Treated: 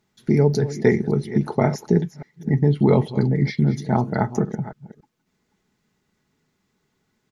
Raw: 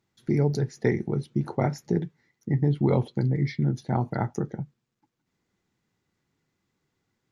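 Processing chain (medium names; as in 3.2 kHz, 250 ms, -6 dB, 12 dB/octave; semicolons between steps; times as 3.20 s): chunks repeated in reverse 278 ms, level -14 dB; comb 4.7 ms, depth 38%; trim +6 dB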